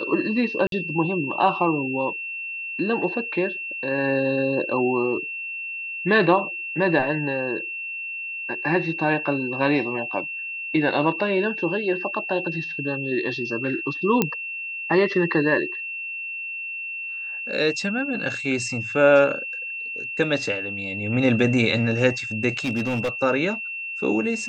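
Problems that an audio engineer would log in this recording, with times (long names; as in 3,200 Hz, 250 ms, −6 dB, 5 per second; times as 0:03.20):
whistle 2,700 Hz −29 dBFS
0:00.67–0:00.72: drop-out 52 ms
0:14.22: click −5 dBFS
0:22.64–0:23.09: clipping −19.5 dBFS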